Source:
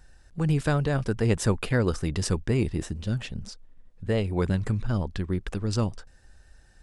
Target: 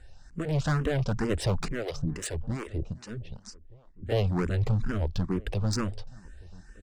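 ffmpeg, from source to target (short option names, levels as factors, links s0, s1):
-filter_complex "[0:a]lowpass=f=8300:w=0.5412,lowpass=f=8300:w=1.3066,lowshelf=f=160:g=3,asoftclip=type=hard:threshold=0.0562,asettb=1/sr,asplit=3[s0][s1][s2];[s0]atrim=end=1.684[s3];[s1]atrim=start=1.68:end=4.12,asetpts=PTS-STARTPTS,afade=t=in:d=0.004:c=qsin,afade=t=out:st=2.436:d=0.004:c=qsin,acrossover=split=440[s4][s5];[s4]aeval=exprs='val(0)*(1-1/2+1/2*cos(2*PI*2.6*n/s))':c=same[s6];[s5]aeval=exprs='val(0)*(1-1/2-1/2*cos(2*PI*2.6*n/s))':c=same[s7];[s6][s7]amix=inputs=2:normalize=0[s8];[s2]atrim=start=4.116[s9];[s3][s8]acrossfade=d=0.004:c1=hsin:c2=qsin[s10];[s10][s9]acrossfade=d=0.004:c1=qsin:c2=hsin,asplit=2[s11][s12];[s12]adelay=1224,volume=0.0708,highshelf=f=4000:g=-27.6[s13];[s11][s13]amix=inputs=2:normalize=0,asplit=2[s14][s15];[s15]afreqshift=2.2[s16];[s14][s16]amix=inputs=2:normalize=1,volume=1.68"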